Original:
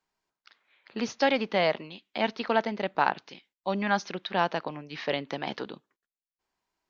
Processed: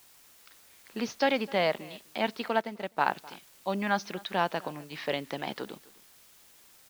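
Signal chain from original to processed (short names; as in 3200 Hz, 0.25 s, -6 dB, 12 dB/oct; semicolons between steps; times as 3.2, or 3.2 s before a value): in parallel at -3 dB: requantised 8-bit, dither triangular; on the sum: echo 0.256 s -22.5 dB; 2.48–3.01 upward expander 1.5:1, over -37 dBFS; gain -6.5 dB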